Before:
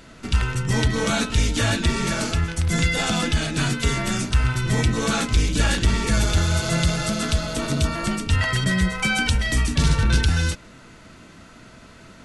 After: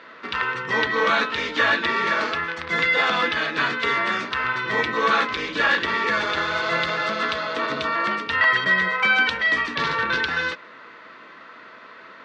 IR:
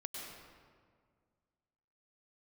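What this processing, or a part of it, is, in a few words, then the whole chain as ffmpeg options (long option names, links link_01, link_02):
phone earpiece: -af "highpass=460,equalizer=frequency=480:width_type=q:width=4:gain=4,equalizer=frequency=720:width_type=q:width=4:gain=-4,equalizer=frequency=1100:width_type=q:width=4:gain=9,equalizer=frequency=1800:width_type=q:width=4:gain=7,equalizer=frequency=2900:width_type=q:width=4:gain=-3,lowpass=frequency=3800:width=0.5412,lowpass=frequency=3800:width=1.3066,volume=3dB"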